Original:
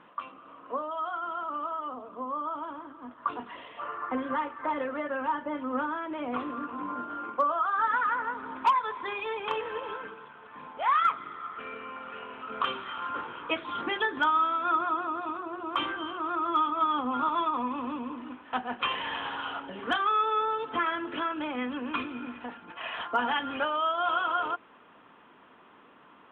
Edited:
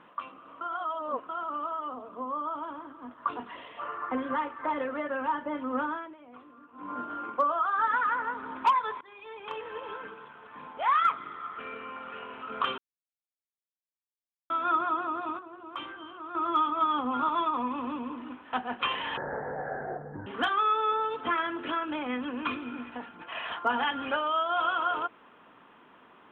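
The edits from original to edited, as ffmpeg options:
-filter_complex "[0:a]asplit=12[a][b][c][d][e][f][g][h][i][j][k][l];[a]atrim=end=0.612[m];[b]atrim=start=0.608:end=1.292,asetpts=PTS-STARTPTS,areverse[n];[c]atrim=start=1.288:end=6.16,asetpts=PTS-STARTPTS,afade=t=out:st=4.622:d=0.25:silence=0.125893[o];[d]atrim=start=6.16:end=6.73,asetpts=PTS-STARTPTS,volume=-18dB[p];[e]atrim=start=6.73:end=9.01,asetpts=PTS-STARTPTS,afade=t=in:d=0.25:silence=0.125893,afade=t=out:st=2.276:d=0.004:c=hsin:silence=0.0668344[q];[f]atrim=start=9.01:end=12.78,asetpts=PTS-STARTPTS,afade=t=in:d=1.21:silence=0.0668344,afade=t=out:st=3.766:d=0.004:c=hsin[r];[g]atrim=start=12.78:end=14.5,asetpts=PTS-STARTPTS,volume=0[s];[h]atrim=start=14.5:end=15.392,asetpts=PTS-STARTPTS,afade=t=in:d=0.004:c=hsin[t];[i]atrim=start=15.388:end=16.352,asetpts=PTS-STARTPTS,volume=-9dB[u];[j]atrim=start=16.348:end=19.174[v];[k]atrim=start=19.17:end=19.75,asetpts=PTS-STARTPTS,asetrate=23373,aresample=44100,atrim=end_sample=48260,asetpts=PTS-STARTPTS[w];[l]atrim=start=19.746[x];[m][n]acrossfade=d=0.004:c1=hsin:c2=hsin[y];[o][p][q][r][s][t]concat=n=6:v=0:a=1[z];[y][z]acrossfade=d=0.004:c1=hsin:c2=hsin[aa];[aa][u]acrossfade=d=0.004:c1=hsin:c2=hsin[ab];[ab][v]acrossfade=d=0.004:c1=hsin:c2=hsin[ac];[ac][w]acrossfade=d=0.004:c1=hsin:c2=hsin[ad];[ad][x]acrossfade=d=0.004:c1=hsin:c2=hsin"

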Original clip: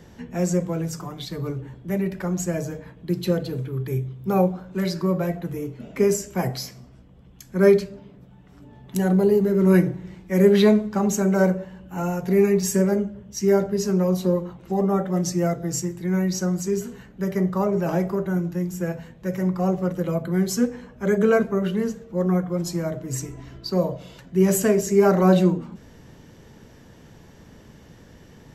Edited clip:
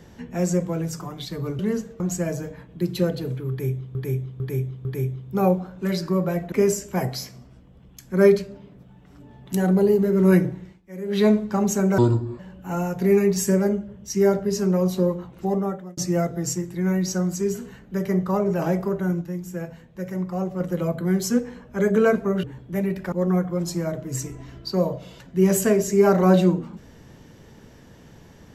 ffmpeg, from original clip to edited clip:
-filter_complex "[0:a]asplit=16[a][b][c][d][e][f][g][h][i][j][k][l][m][n][o][p];[a]atrim=end=1.592[q];[b]atrim=start=21.698:end=22.112[r];[c]atrim=start=2.278:end=4.232[s];[d]atrim=start=3.778:end=4.232[t];[e]atrim=start=3.778:end=4.232[u];[f]atrim=start=3.778:end=5.452[v];[g]atrim=start=5.938:end=10.23,asetpts=PTS-STARTPTS,afade=t=out:st=4.032:d=0.26:silence=0.141254[w];[h]atrim=start=10.23:end=10.47,asetpts=PTS-STARTPTS,volume=-17dB[x];[i]atrim=start=10.47:end=11.404,asetpts=PTS-STARTPTS,afade=t=in:d=0.26:silence=0.141254[y];[j]atrim=start=11.4:end=11.66,asetpts=PTS-STARTPTS,asetrate=27783,aresample=44100[z];[k]atrim=start=11.656:end=15.24,asetpts=PTS-STARTPTS,afade=t=out:st=3.074:d=0.51[aa];[l]atrim=start=15.24:end=18.482,asetpts=PTS-STARTPTS,afade=t=in:d=0.004:c=hsin[ab];[m]atrim=start=18.478:end=19.872,asetpts=PTS-STARTPTS,volume=-4.5dB[ac];[n]atrim=start=19.868:end=21.702[ad];[o]atrim=start=1.588:end=2.282[ae];[p]atrim=start=22.108[af];[q][r]acrossfade=d=0.004:c1=hsin:c2=hsin[ag];[ag][s]acrossfade=d=0.004:c1=hsin:c2=hsin[ah];[ah][t]acrossfade=d=0.004:c1=hsin:c2=hsin[ai];[ai][u]acrossfade=d=0.004:c1=hsin:c2=hsin[aj];[aj][v]acrossfade=d=0.004:c1=hsin:c2=hsin[ak];[w][x][y]concat=n=3:v=0:a=1[al];[ak][al]acrossfade=d=0.004:c1=hsin:c2=hsin[am];[am][z]acrossfade=d=0.004:c1=hsin:c2=hsin[an];[aa][ab]concat=n=2:v=0:a=1[ao];[an][ao]acrossfade=d=0.004:c1=hsin:c2=hsin[ap];[ap][ac]acrossfade=d=0.004:c1=hsin:c2=hsin[aq];[aq][ad]acrossfade=d=0.004:c1=hsin:c2=hsin[ar];[ar][ae]acrossfade=d=0.004:c1=hsin:c2=hsin[as];[as][af]acrossfade=d=0.004:c1=hsin:c2=hsin"

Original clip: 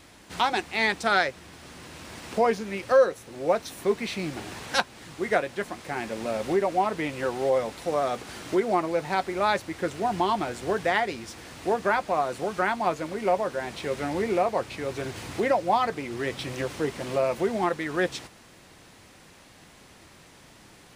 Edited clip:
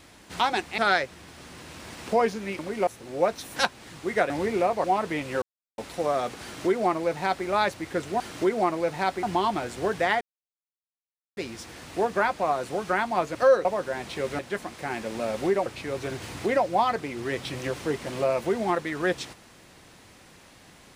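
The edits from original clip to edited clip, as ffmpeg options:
-filter_complex "[0:a]asplit=16[a][b][c][d][e][f][g][h][i][j][k][l][m][n][o][p];[a]atrim=end=0.782[q];[b]atrim=start=1.028:end=2.842[r];[c]atrim=start=13.038:end=13.322[s];[d]atrim=start=3.138:end=3.832[t];[e]atrim=start=4.708:end=5.452[u];[f]atrim=start=14.058:end=14.602[v];[g]atrim=start=6.718:end=7.3,asetpts=PTS-STARTPTS,afade=t=out:st=0.578:d=0.004:c=hsin[w];[h]atrim=start=7.3:end=7.66,asetpts=PTS-STARTPTS,volume=0[x];[i]atrim=start=7.66:end=10.082,asetpts=PTS-STARTPTS,afade=t=in:d=0.004:c=hsin[y];[j]atrim=start=8.308:end=9.342[z];[k]atrim=start=10.078:end=11.06,asetpts=PTS-STARTPTS,afade=t=out:st=0.978:d=0.004:c=hsin,apad=pad_dur=1.16[aa];[l]atrim=start=11.06:end=13.042,asetpts=PTS-STARTPTS,afade=t=in:d=0.004:c=hsin[ab];[m]atrim=start=2.838:end=3.142[ac];[n]atrim=start=13.318:end=14.062[ad];[o]atrim=start=5.448:end=6.722[ae];[p]atrim=start=14.598[af];[q][r]acrossfade=d=0.004:c1=hsin:c2=hsin[ag];[ag][s]acrossfade=d=0.004:c1=hsin:c2=hsin[ah];[ah][t]acrossfade=d=0.004:c1=hsin:c2=hsin[ai];[ai][u]acrossfade=d=0.004:c1=hsin:c2=hsin[aj];[aj][v]acrossfade=d=0.004:c1=hsin:c2=hsin[ak];[w][x][y]concat=n=3:v=0:a=1[al];[ak][al]acrossfade=d=0.004:c1=hsin:c2=hsin[am];[am][z]acrossfade=d=0.004:c1=hsin:c2=hsin[an];[aa][ab]concat=n=2:v=0:a=1[ao];[an][ao]acrossfade=d=0.004:c1=hsin:c2=hsin[ap];[ap][ac]acrossfade=d=0.004:c1=hsin:c2=hsin[aq];[aq][ad]acrossfade=d=0.004:c1=hsin:c2=hsin[ar];[ar][ae]acrossfade=d=0.004:c1=hsin:c2=hsin[as];[as][af]acrossfade=d=0.004:c1=hsin:c2=hsin"

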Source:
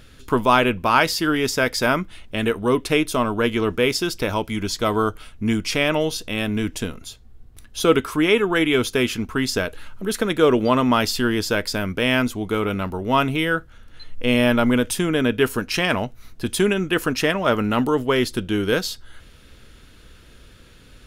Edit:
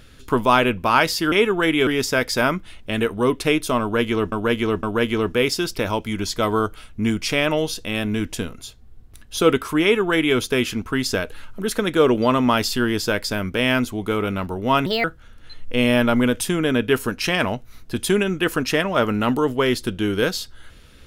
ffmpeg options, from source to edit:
-filter_complex "[0:a]asplit=7[a][b][c][d][e][f][g];[a]atrim=end=1.322[h];[b]atrim=start=8.248:end=8.802[i];[c]atrim=start=1.318:end=3.772[j];[d]atrim=start=3.258:end=3.772[k];[e]atrim=start=3.258:end=13.294[l];[f]atrim=start=13.29:end=13.54,asetpts=PTS-STARTPTS,asetrate=61299,aresample=44100[m];[g]atrim=start=13.536[n];[h][i]acrossfade=d=0.004:c1=hsin:c2=hsin[o];[o][j]acrossfade=d=0.004:c1=hsin:c2=hsin[p];[p][k]acrossfade=d=0.004:c1=hsin:c2=hsin[q];[q][l]acrossfade=d=0.004:c1=hsin:c2=hsin[r];[r][m]acrossfade=d=0.004:c1=hsin:c2=hsin[s];[s][n]acrossfade=d=0.004:c1=hsin:c2=hsin"

